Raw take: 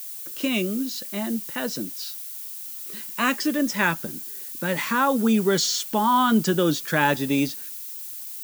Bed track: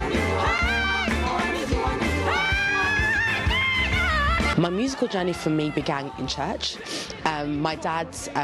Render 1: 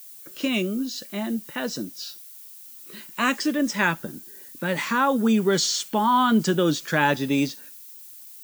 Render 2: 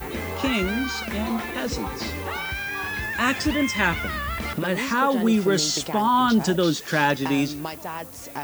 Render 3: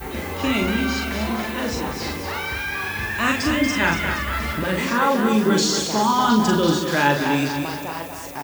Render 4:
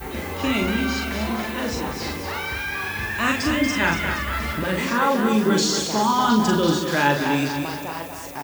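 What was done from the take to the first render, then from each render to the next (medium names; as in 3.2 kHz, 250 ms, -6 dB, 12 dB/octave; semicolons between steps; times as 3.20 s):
noise print and reduce 8 dB
add bed track -7 dB
doubling 42 ms -3.5 dB; two-band feedback delay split 390 Hz, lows 136 ms, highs 235 ms, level -7 dB
trim -1 dB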